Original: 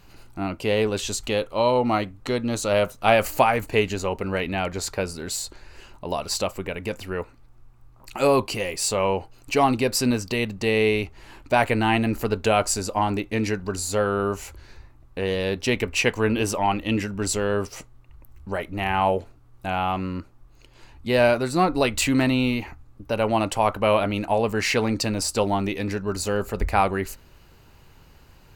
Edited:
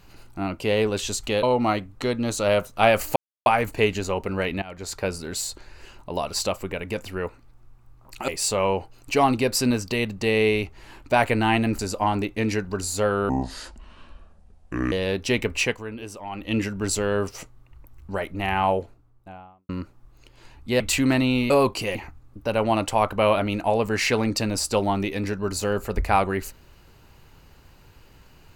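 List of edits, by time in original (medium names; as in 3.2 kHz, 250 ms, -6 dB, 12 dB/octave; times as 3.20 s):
1.43–1.68 s: delete
3.41 s: insert silence 0.30 s
4.57–5.02 s: fade in, from -19.5 dB
8.23–8.68 s: move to 22.59 s
12.19–12.74 s: delete
14.24–15.30 s: speed 65%
15.96–16.95 s: dip -13 dB, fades 0.26 s
18.88–20.07 s: studio fade out
21.18–21.89 s: delete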